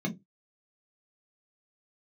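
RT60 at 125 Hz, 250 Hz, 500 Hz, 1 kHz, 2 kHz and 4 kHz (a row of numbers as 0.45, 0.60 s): 0.20, 0.25, 0.20, 0.15, 0.15, 0.10 s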